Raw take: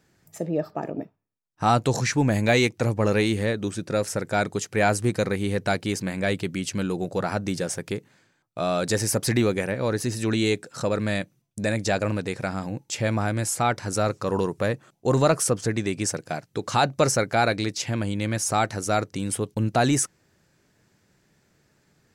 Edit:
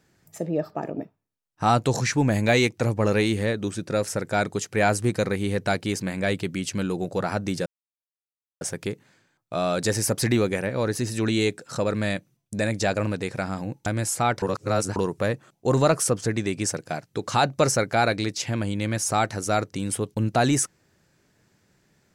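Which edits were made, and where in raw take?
7.66 insert silence 0.95 s
12.91–13.26 cut
13.82–14.36 reverse

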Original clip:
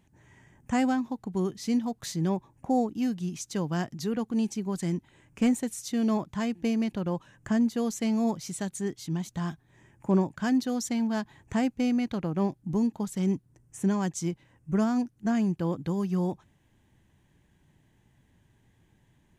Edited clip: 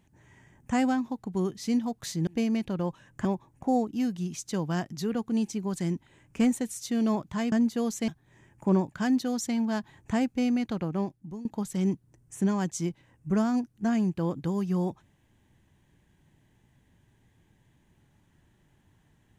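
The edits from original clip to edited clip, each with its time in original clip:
6.54–7.52 move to 2.27
8.08–9.5 cut
12.23–12.87 fade out, to -19 dB

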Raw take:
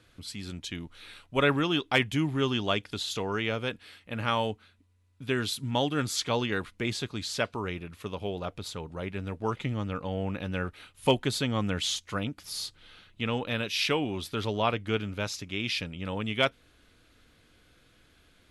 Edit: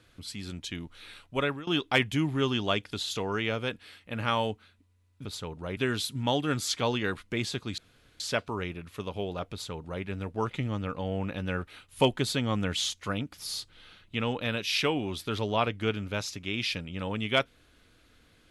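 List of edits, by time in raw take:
1.26–1.67 fade out, to -23 dB
7.26 insert room tone 0.42 s
8.58–9.1 copy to 5.25

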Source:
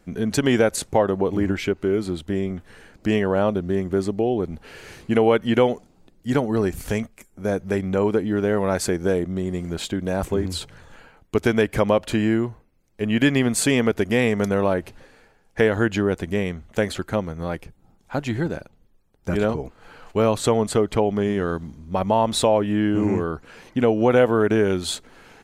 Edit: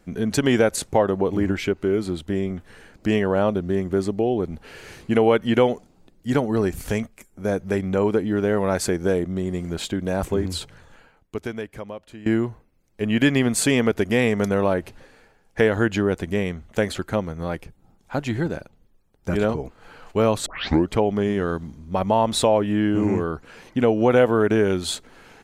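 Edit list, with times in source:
10.55–12.26 fade out quadratic, to -19 dB
20.46 tape start 0.43 s

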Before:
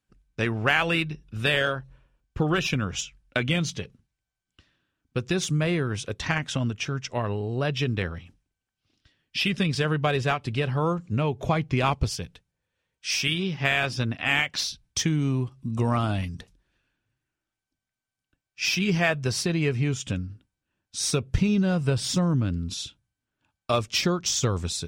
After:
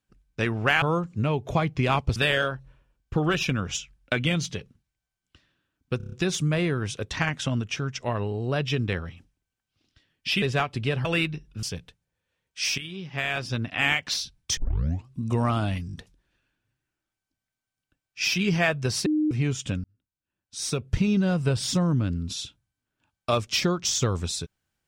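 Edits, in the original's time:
0.82–1.4 swap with 10.76–12.1
5.21 stutter 0.03 s, 6 plays
9.51–10.13 cut
13.25–14.25 fade in, from -14 dB
15.04 tape start 0.52 s
16.34 stutter 0.02 s, 4 plays
19.47–19.72 bleep 306 Hz -20 dBFS
20.25–21.53 fade in

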